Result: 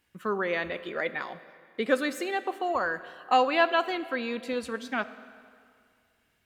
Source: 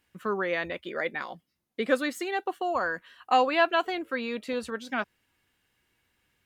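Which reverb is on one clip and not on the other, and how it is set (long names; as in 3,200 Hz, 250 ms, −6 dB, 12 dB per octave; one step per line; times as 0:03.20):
comb and all-pass reverb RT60 2.2 s, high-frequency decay 0.85×, pre-delay 0 ms, DRR 13.5 dB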